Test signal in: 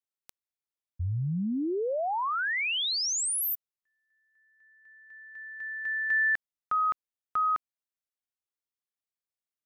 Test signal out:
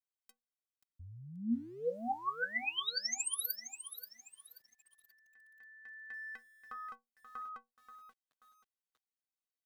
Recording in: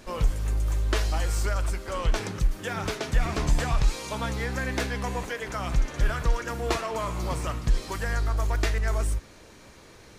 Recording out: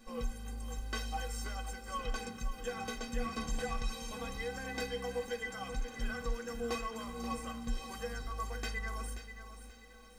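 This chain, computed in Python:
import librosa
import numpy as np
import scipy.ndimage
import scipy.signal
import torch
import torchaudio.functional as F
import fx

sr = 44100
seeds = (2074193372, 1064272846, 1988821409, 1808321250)

y = fx.stiff_resonator(x, sr, f0_hz=230.0, decay_s=0.22, stiffness=0.03)
y = fx.echo_crushed(y, sr, ms=532, feedback_pct=35, bits=11, wet_db=-10.5)
y = y * 10.0 ** (3.0 / 20.0)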